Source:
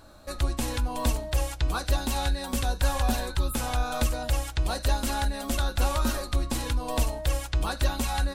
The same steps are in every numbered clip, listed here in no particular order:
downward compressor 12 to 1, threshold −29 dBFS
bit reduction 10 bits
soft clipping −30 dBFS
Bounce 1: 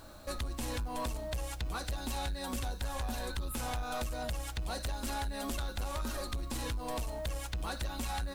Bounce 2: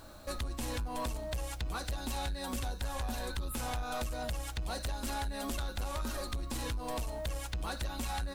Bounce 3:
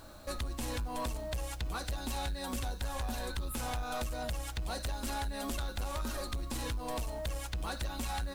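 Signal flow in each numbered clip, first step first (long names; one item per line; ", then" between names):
downward compressor, then bit reduction, then soft clipping
bit reduction, then downward compressor, then soft clipping
downward compressor, then soft clipping, then bit reduction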